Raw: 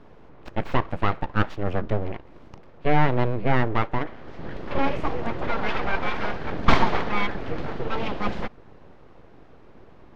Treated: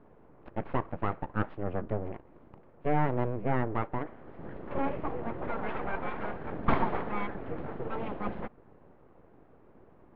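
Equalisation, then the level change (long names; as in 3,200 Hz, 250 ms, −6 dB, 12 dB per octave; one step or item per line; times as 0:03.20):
low-pass filter 1,600 Hz 6 dB per octave
high-frequency loss of the air 340 metres
low-shelf EQ 100 Hz −7.5 dB
−4.5 dB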